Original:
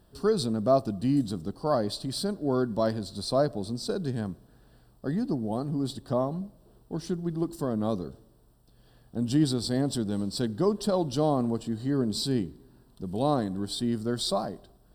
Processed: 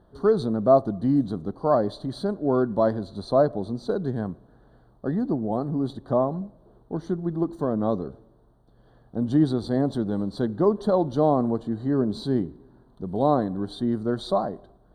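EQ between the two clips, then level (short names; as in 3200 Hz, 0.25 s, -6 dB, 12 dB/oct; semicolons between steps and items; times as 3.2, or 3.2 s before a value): running mean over 17 samples; low shelf 330 Hz -7 dB; +8.0 dB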